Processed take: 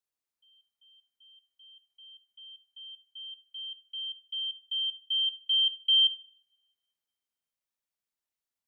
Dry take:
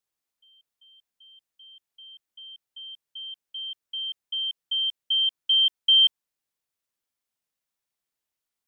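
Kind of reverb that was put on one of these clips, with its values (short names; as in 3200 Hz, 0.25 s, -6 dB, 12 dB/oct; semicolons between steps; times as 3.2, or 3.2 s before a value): two-slope reverb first 0.6 s, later 1.8 s, from -25 dB, DRR 12 dB; gain -6.5 dB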